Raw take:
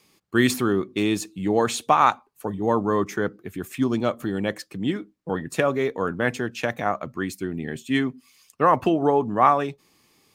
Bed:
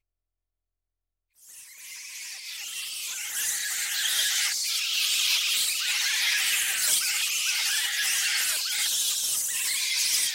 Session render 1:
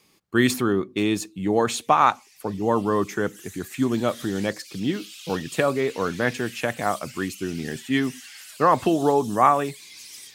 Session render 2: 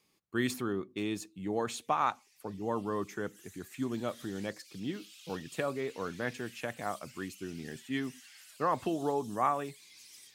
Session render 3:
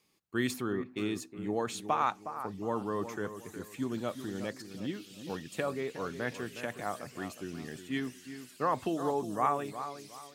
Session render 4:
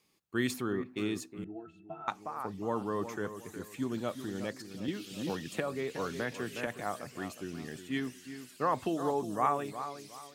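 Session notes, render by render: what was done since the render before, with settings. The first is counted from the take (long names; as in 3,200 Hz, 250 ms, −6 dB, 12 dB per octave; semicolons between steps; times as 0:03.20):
mix in bed −17.5 dB
level −12 dB
bucket-brigade delay 363 ms, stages 4,096, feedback 31%, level −10.5 dB
0:01.44–0:02.08: resonances in every octave E, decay 0.16 s; 0:04.88–0:06.67: multiband upward and downward compressor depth 100%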